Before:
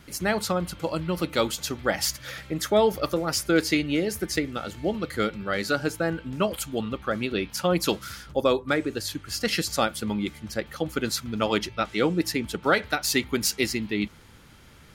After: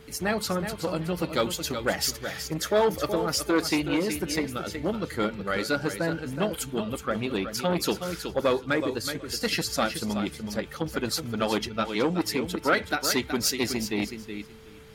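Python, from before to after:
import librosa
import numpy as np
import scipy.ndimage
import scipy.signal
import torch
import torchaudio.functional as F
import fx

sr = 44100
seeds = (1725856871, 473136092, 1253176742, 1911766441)

p1 = fx.spec_quant(x, sr, step_db=15)
p2 = p1 + fx.echo_feedback(p1, sr, ms=372, feedback_pct=15, wet_db=-9.5, dry=0)
p3 = p2 + 10.0 ** (-50.0 / 20.0) * np.sin(2.0 * np.pi * 440.0 * np.arange(len(p2)) / sr)
y = fx.transformer_sat(p3, sr, knee_hz=830.0)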